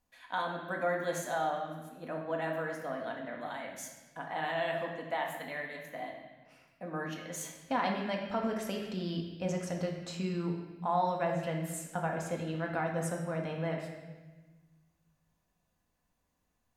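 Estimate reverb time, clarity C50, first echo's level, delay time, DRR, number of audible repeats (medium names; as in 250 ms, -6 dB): 1.2 s, 4.0 dB, no echo, no echo, 0.0 dB, no echo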